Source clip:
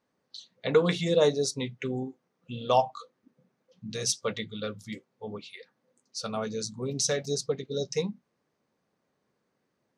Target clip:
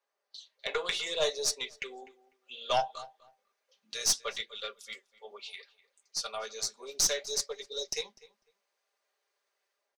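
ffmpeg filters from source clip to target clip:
ffmpeg -i in.wav -filter_complex "[0:a]highpass=frequency=500:width=0.5412,highpass=frequency=500:width=1.3066,aecho=1:1:5:0.55,acrossover=split=680|1800[link_01][link_02][link_03];[link_03]dynaudnorm=framelen=360:gausssize=3:maxgain=8dB[link_04];[link_01][link_02][link_04]amix=inputs=3:normalize=0,aeval=exprs='(tanh(3.98*val(0)+0.4)-tanh(0.4))/3.98':channel_layout=same,flanger=delay=2.4:depth=5.2:regen=-79:speed=0.65:shape=sinusoidal,asplit=2[link_05][link_06];[link_06]adelay=249,lowpass=frequency=2900:poles=1,volume=-19dB,asplit=2[link_07][link_08];[link_08]adelay=249,lowpass=frequency=2900:poles=1,volume=0.18[link_09];[link_07][link_09]amix=inputs=2:normalize=0[link_10];[link_05][link_10]amix=inputs=2:normalize=0" out.wav

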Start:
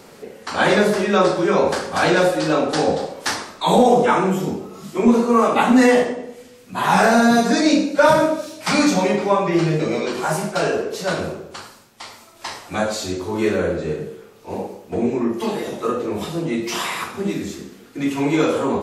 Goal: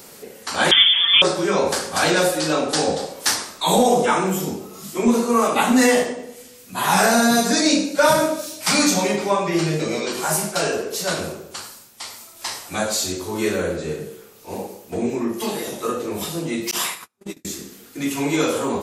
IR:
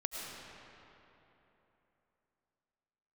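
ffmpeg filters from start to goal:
-filter_complex "[0:a]asettb=1/sr,asplit=3[link_01][link_02][link_03];[link_01]atrim=end=0.714[link_04];[link_02]atrim=start=0.71:end=1.22,asetpts=PTS-STARTPTS,afade=type=in:duration=0.004:curve=qsin,afade=type=out:start_time=0.506:duration=0.004:curve=qsin,lowpass=frequency=3100:width_type=q:width=0.5098,lowpass=frequency=3100:width_type=q:width=0.6013,lowpass=frequency=3100:width_type=q:width=0.9,lowpass=frequency=3100:width_type=q:width=2.563,afreqshift=-3700[link_05];[link_03]atrim=start=1.216[link_06];[link_04][link_05]acrossfade=duration=0.004:curve1=hsin:curve2=qsin[link_07];[link_07][link_06]acrossfade=duration=0.004:curve1=qsin:curve2=hsin,aemphasis=mode=production:type=75kf,asettb=1/sr,asplit=3[link_08][link_09][link_10];[link_08]atrim=end=16.714[link_11];[link_09]atrim=start=16.71:end=17.45,asetpts=PTS-STARTPTS,afade=type=in:duration=0.004:curve=qsin,afade=type=out:start_time=0.736:duration=0.004:curve=qsin,agate=range=-45dB:threshold=-19dB:ratio=16:detection=peak[link_12];[link_10]atrim=start=17.446[link_13];[link_11][link_12]acrossfade=duration=0.004:curve1=hsin:curve2=qsin[link_14];[link_14][link_13]acrossfade=duration=0.004:curve1=qsin:curve2=hsin,volume=-3dB"

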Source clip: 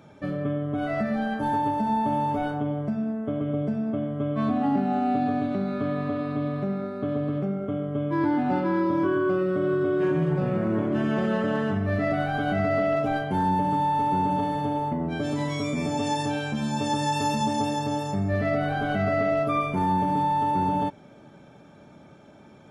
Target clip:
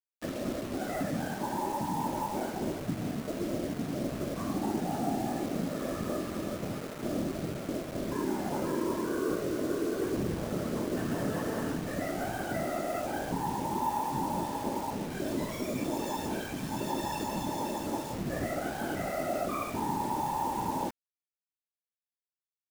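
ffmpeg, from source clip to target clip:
ffmpeg -i in.wav -filter_complex "[0:a]acrossover=split=390|1600[link_01][link_02][link_03];[link_01]acontrast=34[link_04];[link_04][link_02][link_03]amix=inputs=3:normalize=0,highpass=160,lowshelf=frequency=300:gain=-6,asplit=2[link_05][link_06];[link_06]asplit=4[link_07][link_08][link_09][link_10];[link_07]adelay=81,afreqshift=60,volume=-20dB[link_11];[link_08]adelay=162,afreqshift=120,volume=-25.2dB[link_12];[link_09]adelay=243,afreqshift=180,volume=-30.4dB[link_13];[link_10]adelay=324,afreqshift=240,volume=-35.6dB[link_14];[link_11][link_12][link_13][link_14]amix=inputs=4:normalize=0[link_15];[link_05][link_15]amix=inputs=2:normalize=0,aphaser=in_gain=1:out_gain=1:delay=3.8:decay=0.21:speed=0.98:type=sinusoidal,alimiter=limit=-18.5dB:level=0:latency=1:release=15,afftfilt=real='hypot(re,im)*cos(2*PI*random(0))':imag='hypot(re,im)*sin(2*PI*random(1))':win_size=512:overlap=0.75,aeval=exprs='sgn(val(0))*max(abs(val(0))-0.00266,0)':channel_layout=same,acrusher=bits=6:mix=0:aa=0.000001,adynamicequalizer=threshold=0.00282:dfrequency=3400:dqfactor=0.88:tfrequency=3400:tqfactor=0.88:attack=5:release=100:ratio=0.375:range=1.5:mode=cutabove:tftype=bell" out.wav

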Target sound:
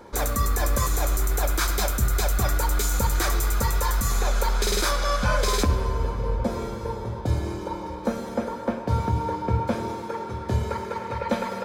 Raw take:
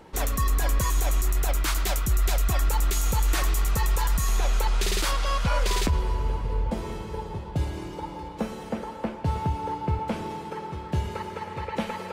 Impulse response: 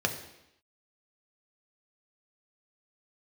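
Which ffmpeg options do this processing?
-filter_complex "[0:a]asplit=2[link_01][link_02];[1:a]atrim=start_sample=2205,highshelf=frequency=11000:gain=10[link_03];[link_02][link_03]afir=irnorm=-1:irlink=0,volume=-11dB[link_04];[link_01][link_04]amix=inputs=2:normalize=0,asetrate=45938,aresample=44100"

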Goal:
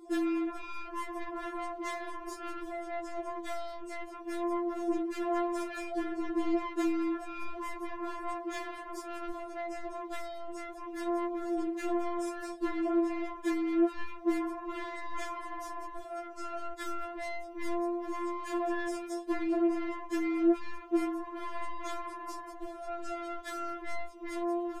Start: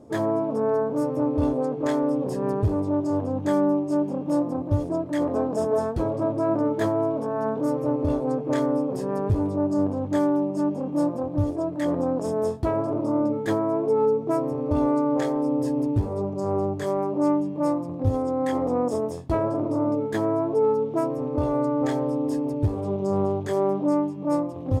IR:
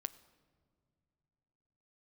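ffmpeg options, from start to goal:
-af "asoftclip=type=tanh:threshold=-25.5dB,afftfilt=real='re*4*eq(mod(b,16),0)':imag='im*4*eq(mod(b,16),0)':win_size=2048:overlap=0.75,volume=2dB"

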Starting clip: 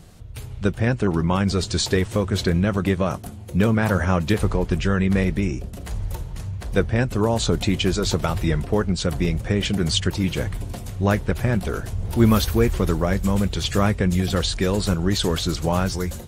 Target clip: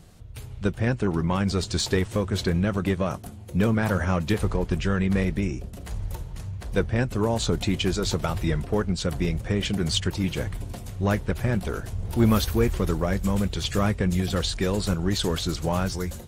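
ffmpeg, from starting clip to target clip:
ffmpeg -i in.wav -af "acontrast=38,aeval=exprs='0.794*(cos(1*acos(clip(val(0)/0.794,-1,1)))-cos(1*PI/2))+0.0282*(cos(4*acos(clip(val(0)/0.794,-1,1)))-cos(4*PI/2))+0.02*(cos(7*acos(clip(val(0)/0.794,-1,1)))-cos(7*PI/2))':channel_layout=same,volume=-8dB" out.wav

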